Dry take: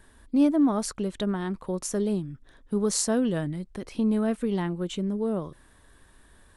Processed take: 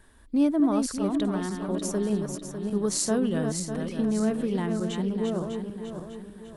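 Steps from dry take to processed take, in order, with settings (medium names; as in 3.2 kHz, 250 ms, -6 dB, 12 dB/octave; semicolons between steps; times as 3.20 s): backward echo that repeats 300 ms, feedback 64%, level -5.5 dB; trim -1.5 dB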